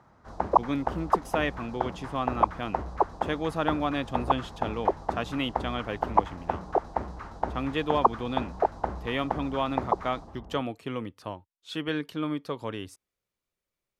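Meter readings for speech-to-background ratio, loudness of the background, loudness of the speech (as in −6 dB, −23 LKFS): −2.0 dB, −31.0 LKFS, −33.0 LKFS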